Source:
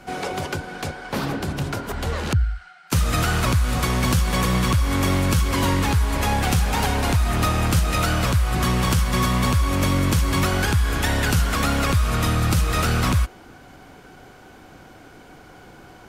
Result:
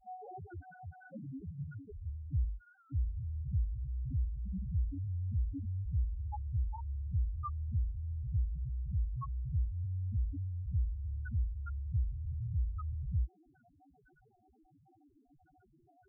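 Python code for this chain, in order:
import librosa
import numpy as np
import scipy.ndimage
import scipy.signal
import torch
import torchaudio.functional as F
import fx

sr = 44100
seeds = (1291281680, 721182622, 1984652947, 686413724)

y = fx.spec_topn(x, sr, count=1)
y = fx.record_warp(y, sr, rpm=78.0, depth_cents=100.0)
y = y * librosa.db_to_amplitude(-7.5)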